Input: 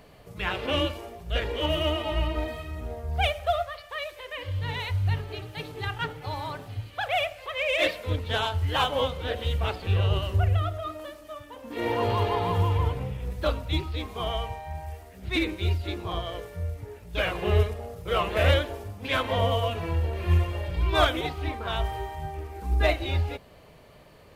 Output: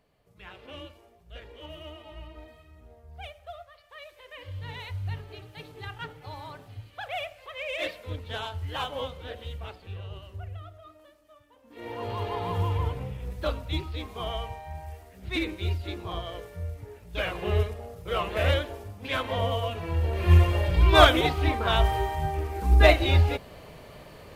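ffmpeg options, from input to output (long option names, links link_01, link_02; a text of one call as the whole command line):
ffmpeg -i in.wav -af "volume=14.5dB,afade=type=in:start_time=3.65:duration=0.83:silence=0.334965,afade=type=out:start_time=9.08:duration=0.93:silence=0.375837,afade=type=in:start_time=11.65:duration=1.02:silence=0.223872,afade=type=in:start_time=19.86:duration=0.61:silence=0.354813" out.wav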